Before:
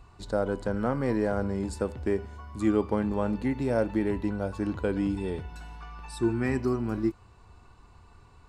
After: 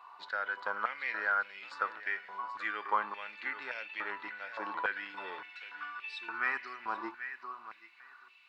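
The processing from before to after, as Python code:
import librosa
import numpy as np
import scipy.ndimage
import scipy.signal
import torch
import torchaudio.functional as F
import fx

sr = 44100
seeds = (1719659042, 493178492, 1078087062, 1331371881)

p1 = scipy.signal.sosfilt(scipy.signal.butter(4, 4200.0, 'lowpass', fs=sr, output='sos'), x)
p2 = fx.dmg_noise_colour(p1, sr, seeds[0], colour='brown', level_db=-63.0)
p3 = p2 + fx.echo_feedback(p2, sr, ms=783, feedback_pct=18, wet_db=-13.0, dry=0)
y = fx.filter_held_highpass(p3, sr, hz=3.5, low_hz=980.0, high_hz=2500.0)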